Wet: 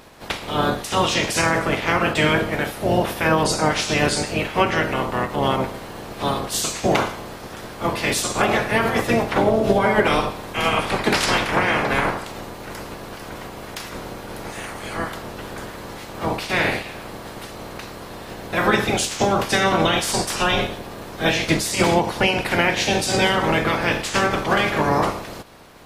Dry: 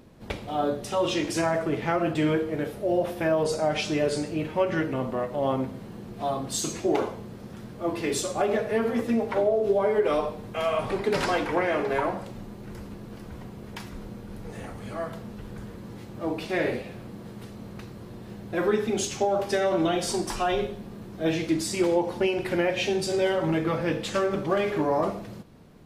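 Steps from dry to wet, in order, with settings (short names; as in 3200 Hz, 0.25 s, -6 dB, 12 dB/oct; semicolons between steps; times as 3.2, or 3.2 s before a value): spectral limiter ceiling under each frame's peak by 19 dB; gain +6 dB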